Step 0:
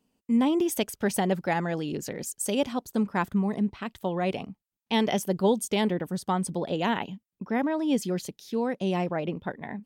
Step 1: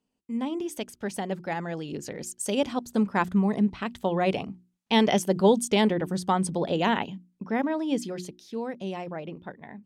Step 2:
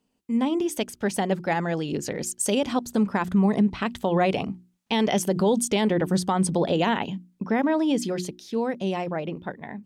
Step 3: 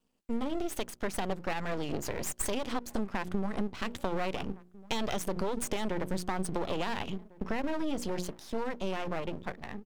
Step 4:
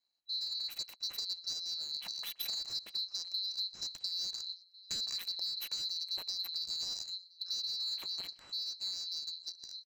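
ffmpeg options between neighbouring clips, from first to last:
ffmpeg -i in.wav -af "lowpass=10000,bandreject=frequency=60:width_type=h:width=6,bandreject=frequency=120:width_type=h:width=6,bandreject=frequency=180:width_type=h:width=6,bandreject=frequency=240:width_type=h:width=6,bandreject=frequency=300:width_type=h:width=6,bandreject=frequency=360:width_type=h:width=6,dynaudnorm=framelen=230:gausssize=21:maxgain=12dB,volume=-6.5dB" out.wav
ffmpeg -i in.wav -af "alimiter=limit=-20dB:level=0:latency=1:release=100,volume=6.5dB" out.wav
ffmpeg -i in.wav -filter_complex "[0:a]asplit=2[link_01][link_02];[link_02]adelay=1399,volume=-28dB,highshelf=frequency=4000:gain=-31.5[link_03];[link_01][link_03]amix=inputs=2:normalize=0,aeval=exprs='max(val(0),0)':channel_layout=same,acompressor=threshold=-27dB:ratio=6" out.wav
ffmpeg -i in.wav -filter_complex "[0:a]afftfilt=real='real(if(lt(b,736),b+184*(1-2*mod(floor(b/184),2)),b),0)':imag='imag(if(lt(b,736),b+184*(1-2*mod(floor(b/184),2)),b),0)':win_size=2048:overlap=0.75,acrossover=split=7300[link_01][link_02];[link_01]aecho=1:1:122:0.0668[link_03];[link_02]aeval=exprs='val(0)*gte(abs(val(0)),0.00668)':channel_layout=same[link_04];[link_03][link_04]amix=inputs=2:normalize=0,volume=-7dB" out.wav

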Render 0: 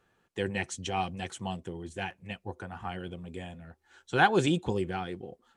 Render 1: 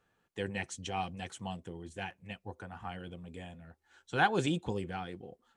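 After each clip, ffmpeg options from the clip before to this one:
ffmpeg -i in.wav -af "bandreject=frequency=370:width=12,volume=-4.5dB" out.wav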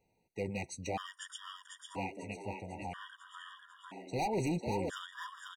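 ffmpeg -i in.wav -filter_complex "[0:a]volume=30dB,asoftclip=hard,volume=-30dB,asplit=9[link_01][link_02][link_03][link_04][link_05][link_06][link_07][link_08][link_09];[link_02]adelay=497,afreqshift=100,volume=-5dB[link_10];[link_03]adelay=994,afreqshift=200,volume=-9.9dB[link_11];[link_04]adelay=1491,afreqshift=300,volume=-14.8dB[link_12];[link_05]adelay=1988,afreqshift=400,volume=-19.6dB[link_13];[link_06]adelay=2485,afreqshift=500,volume=-24.5dB[link_14];[link_07]adelay=2982,afreqshift=600,volume=-29.4dB[link_15];[link_08]adelay=3479,afreqshift=700,volume=-34.3dB[link_16];[link_09]adelay=3976,afreqshift=800,volume=-39.2dB[link_17];[link_01][link_10][link_11][link_12][link_13][link_14][link_15][link_16][link_17]amix=inputs=9:normalize=0,afftfilt=real='re*gt(sin(2*PI*0.51*pts/sr)*(1-2*mod(floor(b*sr/1024/950),2)),0)':imag='im*gt(sin(2*PI*0.51*pts/sr)*(1-2*mod(floor(b*sr/1024/950),2)),0)':win_size=1024:overlap=0.75,volume=1dB" out.wav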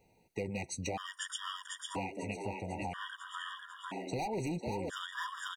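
ffmpeg -i in.wav -af "acompressor=threshold=-43dB:ratio=5,volume=8dB" out.wav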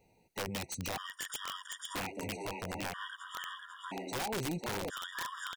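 ffmpeg -i in.wav -af "aeval=exprs='(mod(33.5*val(0)+1,2)-1)/33.5':channel_layout=same" out.wav

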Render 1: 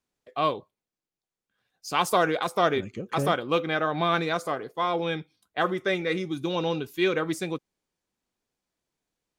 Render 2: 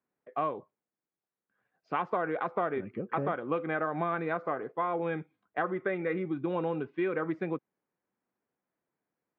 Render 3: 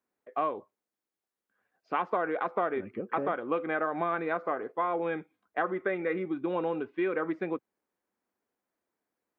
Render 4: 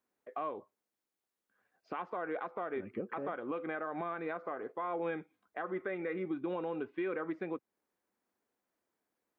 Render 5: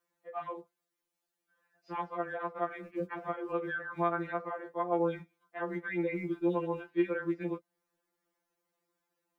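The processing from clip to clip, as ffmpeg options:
ffmpeg -i in.wav -af "lowpass=frequency=2000:width=0.5412,lowpass=frequency=2000:width=1.3066,acompressor=threshold=-27dB:ratio=6,highpass=140" out.wav
ffmpeg -i in.wav -af "equalizer=frequency=140:width_type=o:width=0.57:gain=-13,volume=1.5dB" out.wav
ffmpeg -i in.wav -af "alimiter=level_in=3.5dB:limit=-24dB:level=0:latency=1:release=277,volume=-3.5dB" out.wav
ffmpeg -i in.wav -filter_complex "[0:a]acrossover=split=130|500[link_01][link_02][link_03];[link_01]acrusher=bits=2:mode=log:mix=0:aa=0.000001[link_04];[link_04][link_02][link_03]amix=inputs=3:normalize=0,afftfilt=real='re*2.83*eq(mod(b,8),0)':imag='im*2.83*eq(mod(b,8),0)':win_size=2048:overlap=0.75,volume=4.5dB" out.wav

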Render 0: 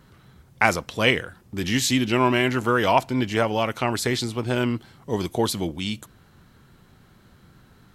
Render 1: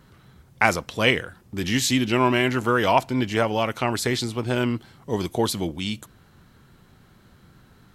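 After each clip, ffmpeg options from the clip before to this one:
ffmpeg -i in.wav -af anull out.wav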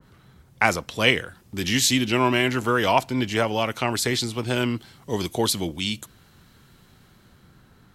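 ffmpeg -i in.wav -filter_complex "[0:a]acrossover=split=410|2300[link_01][link_02][link_03];[link_03]dynaudnorm=framelen=140:gausssize=13:maxgain=6.5dB[link_04];[link_01][link_02][link_04]amix=inputs=3:normalize=0,adynamicequalizer=threshold=0.0282:dfrequency=1900:dqfactor=0.7:tfrequency=1900:tqfactor=0.7:attack=5:release=100:ratio=0.375:range=1.5:mode=cutabove:tftype=highshelf,volume=-1dB" out.wav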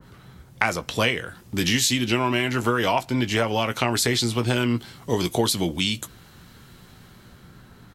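ffmpeg -i in.wav -filter_complex "[0:a]acompressor=threshold=-24dB:ratio=6,asplit=2[link_01][link_02];[link_02]adelay=17,volume=-11dB[link_03];[link_01][link_03]amix=inputs=2:normalize=0,volume=5.5dB" out.wav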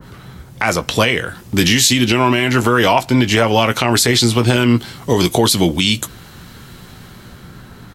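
ffmpeg -i in.wav -af "alimiter=level_in=11.5dB:limit=-1dB:release=50:level=0:latency=1,volume=-1dB" out.wav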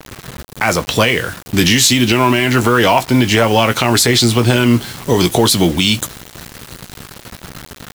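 ffmpeg -i in.wav -filter_complex "[0:a]asplit=2[link_01][link_02];[link_02]asoftclip=type=tanh:threshold=-17.5dB,volume=-7dB[link_03];[link_01][link_03]amix=inputs=2:normalize=0,acrusher=bits=4:mix=0:aa=0.000001" out.wav

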